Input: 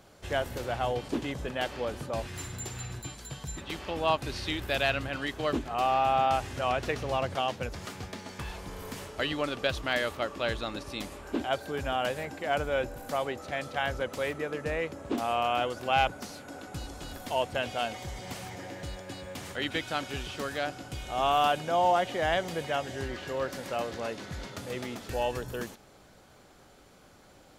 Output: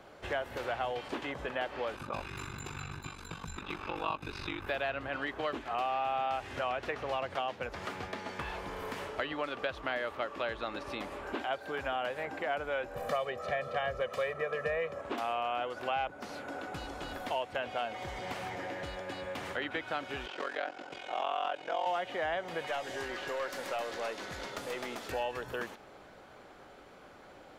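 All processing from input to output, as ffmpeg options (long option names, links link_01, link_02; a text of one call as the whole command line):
ffmpeg -i in.wav -filter_complex "[0:a]asettb=1/sr,asplit=3[link_01][link_02][link_03];[link_01]atrim=end=1.954[link_04];[link_02]atrim=start=1.95:end=4.67,asetpts=PTS-STARTPTS,afade=type=in:duration=0.004:curve=qsin,afade=type=out:start_time=2.716:duration=0.004:curve=qsin,aecho=1:1:0.8:0.58,atrim=end_sample=119952,aeval=exprs='val(0)*sin(2*PI*24*n/s)':channel_layout=same[link_05];[link_03]atrim=start=4.666[link_06];[link_04][link_05]acrossfade=duration=0.004:curve1=hsin:curve2=qsin[link_07];[link_07][link_06]acrossfade=duration=0.004:curve1=qsin:curve2=hsin,asettb=1/sr,asplit=3[link_08][link_09][link_10];[link_08]atrim=end=12.954[link_11];[link_09]atrim=start=12.95:end=15.01,asetpts=PTS-STARTPTS,afade=type=in:duration=0.004:curve=qsin,afade=type=out:start_time=2.056:duration=0.004:curve=qsin,equalizer=frequency=200:width_type=o:width=2.6:gain=8.5,aecho=1:1:1.7:0.87,atrim=end_sample=90846[link_12];[link_10]atrim=start=15.006[link_13];[link_11][link_12]acrossfade=duration=0.004:curve1=hsin:curve2=qsin[link_14];[link_14][link_13]acrossfade=duration=0.004:curve1=qsin:curve2=hsin,asettb=1/sr,asplit=3[link_15][link_16][link_17];[link_15]atrim=end=20.264[link_18];[link_16]atrim=start=20.26:end=21.87,asetpts=PTS-STARTPTS,afade=type=in:duration=0.004:curve=qsin,afade=type=out:start_time=1.606:duration=0.004:curve=qsin,highpass=310,lowpass=7500,bandreject=frequency=1200:width=18,aeval=exprs='val(0)*sin(2*PI*22*n/s)':channel_layout=same[link_19];[link_17]atrim=start=21.866[link_20];[link_18][link_19]acrossfade=duration=0.004:curve1=hsin:curve2=qsin[link_21];[link_21][link_20]acrossfade=duration=0.004:curve1=qsin:curve2=hsin,asettb=1/sr,asplit=3[link_22][link_23][link_24];[link_22]atrim=end=22.674[link_25];[link_23]atrim=start=22.67:end=25.12,asetpts=PTS-STARTPTS,afade=type=in:duration=0.004:curve=qsin,afade=type=out:start_time=2.446:duration=0.004:curve=qsin,bass=frequency=250:gain=-5,treble=frequency=4000:gain=10,aeval=exprs='(tanh(22.4*val(0)+0.4)-tanh(0.4))/22.4':channel_layout=same[link_26];[link_24]atrim=start=25.116[link_27];[link_25][link_26]acrossfade=duration=0.004:curve1=hsin:curve2=qsin[link_28];[link_28][link_27]acrossfade=duration=0.004:curve1=qsin:curve2=hsin,bass=frequency=250:gain=-9,treble=frequency=4000:gain=-14,acrossover=split=710|1700[link_29][link_30][link_31];[link_29]acompressor=threshold=-45dB:ratio=4[link_32];[link_30]acompressor=threshold=-43dB:ratio=4[link_33];[link_31]acompressor=threshold=-48dB:ratio=4[link_34];[link_32][link_33][link_34]amix=inputs=3:normalize=0,volume=5dB" out.wav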